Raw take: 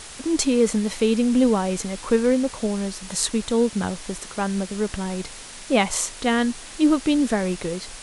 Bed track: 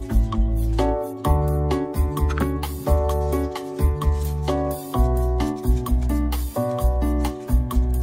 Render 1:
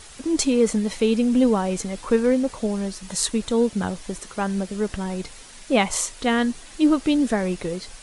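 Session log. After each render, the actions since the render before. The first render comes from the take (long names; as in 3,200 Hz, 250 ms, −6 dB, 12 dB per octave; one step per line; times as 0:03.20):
broadband denoise 7 dB, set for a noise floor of −40 dBFS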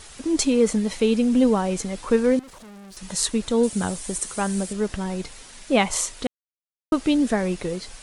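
0:02.39–0:02.97: tube saturation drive 42 dB, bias 0.7
0:03.63–0:04.73: parametric band 8,800 Hz +13 dB 0.96 octaves
0:06.27–0:06.92: silence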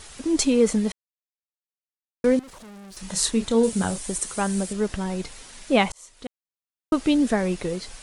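0:00.92–0:02.24: silence
0:02.93–0:03.98: double-tracking delay 31 ms −9 dB
0:05.92–0:06.99: fade in linear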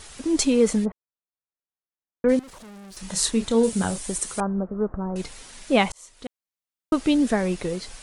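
0:00.84–0:02.28: low-pass filter 1,300 Hz → 2,100 Hz 24 dB per octave
0:04.40–0:05.16: elliptic low-pass filter 1,300 Hz, stop band 80 dB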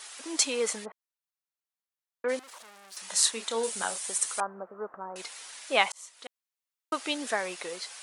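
high-pass filter 800 Hz 12 dB per octave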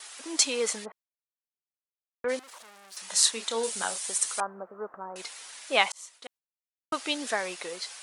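noise gate with hold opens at −39 dBFS
dynamic equaliser 4,700 Hz, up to +3 dB, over −42 dBFS, Q 0.86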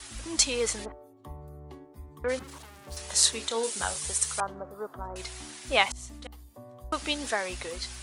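mix in bed track −24.5 dB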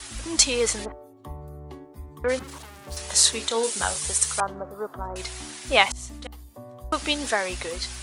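level +5 dB
brickwall limiter −1 dBFS, peak gain reduction 2.5 dB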